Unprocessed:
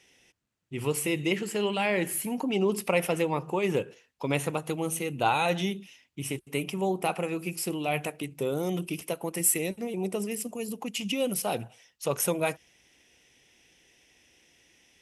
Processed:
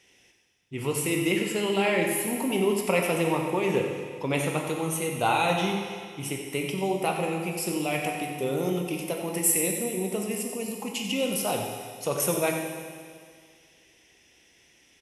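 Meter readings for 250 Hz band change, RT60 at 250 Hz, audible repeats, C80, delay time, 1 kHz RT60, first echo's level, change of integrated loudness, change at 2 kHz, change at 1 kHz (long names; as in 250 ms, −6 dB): +2.5 dB, 2.0 s, 1, 3.5 dB, 91 ms, 2.0 s, −10.0 dB, +2.0 dB, +3.0 dB, +2.5 dB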